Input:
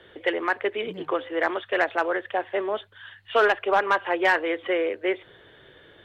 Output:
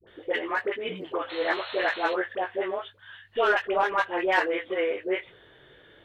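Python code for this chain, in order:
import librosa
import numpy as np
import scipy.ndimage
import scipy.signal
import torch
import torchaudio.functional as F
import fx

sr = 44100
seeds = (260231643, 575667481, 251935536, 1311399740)

y = fx.spec_paint(x, sr, seeds[0], shape='noise', start_s=1.22, length_s=0.85, low_hz=460.0, high_hz=4300.0, level_db=-37.0)
y = fx.dispersion(y, sr, late='highs', ms=74.0, hz=690.0)
y = fx.chorus_voices(y, sr, voices=6, hz=0.95, base_ms=19, depth_ms=3.6, mix_pct=35)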